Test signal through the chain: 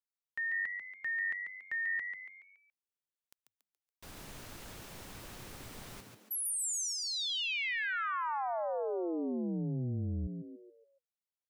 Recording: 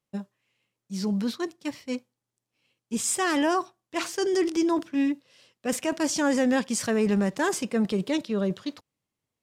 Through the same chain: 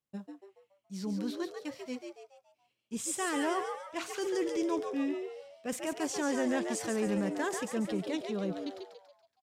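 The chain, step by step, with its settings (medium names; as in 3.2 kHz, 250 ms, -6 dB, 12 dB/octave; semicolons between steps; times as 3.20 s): dynamic bell 5 kHz, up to -4 dB, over -46 dBFS, Q 4; on a send: frequency-shifting echo 141 ms, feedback 43%, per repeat +95 Hz, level -6 dB; on the sum: trim -8.5 dB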